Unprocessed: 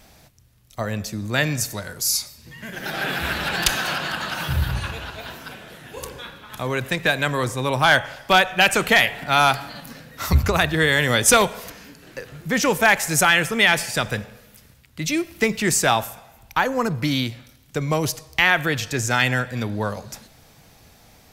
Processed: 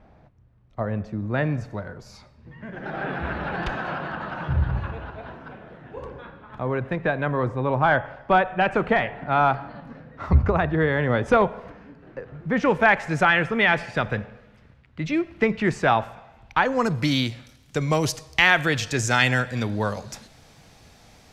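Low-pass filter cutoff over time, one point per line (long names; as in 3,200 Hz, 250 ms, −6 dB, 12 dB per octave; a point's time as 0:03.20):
0:12.32 1,200 Hz
0:12.76 2,000 Hz
0:15.99 2,000 Hz
0:16.64 3,300 Hz
0:16.90 8,200 Hz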